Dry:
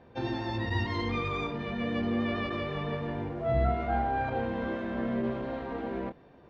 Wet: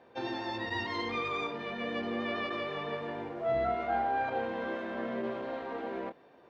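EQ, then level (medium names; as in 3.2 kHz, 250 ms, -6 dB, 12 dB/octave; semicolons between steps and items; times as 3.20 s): high-pass 140 Hz 6 dB/octave; tone controls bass -11 dB, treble +1 dB; 0.0 dB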